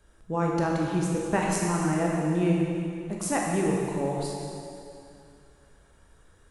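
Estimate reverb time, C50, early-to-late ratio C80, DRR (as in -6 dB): 2.6 s, -0.5 dB, 1.0 dB, -2.0 dB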